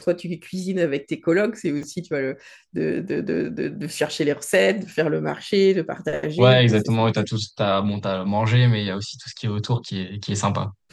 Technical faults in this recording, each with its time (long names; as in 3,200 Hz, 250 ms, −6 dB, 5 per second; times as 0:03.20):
0:01.83: drop-out 2.3 ms